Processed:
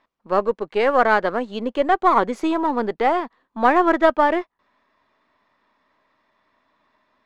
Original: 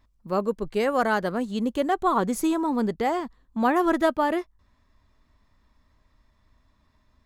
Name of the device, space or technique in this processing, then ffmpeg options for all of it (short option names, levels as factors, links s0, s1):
crystal radio: -af "highpass=400,lowpass=3000,aeval=exprs='if(lt(val(0),0),0.708*val(0),val(0))':c=same,volume=2.66"